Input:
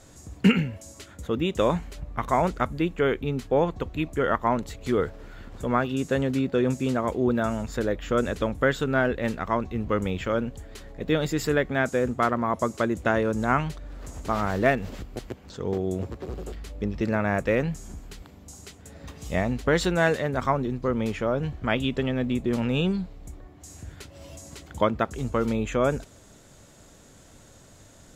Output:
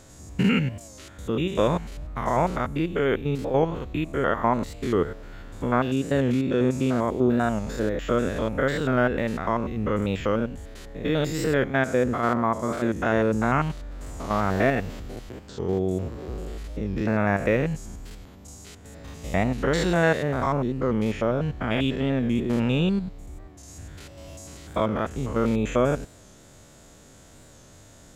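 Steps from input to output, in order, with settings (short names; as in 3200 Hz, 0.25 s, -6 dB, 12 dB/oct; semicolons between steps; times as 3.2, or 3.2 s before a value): stepped spectrum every 0.1 s; record warp 45 rpm, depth 100 cents; gain +3 dB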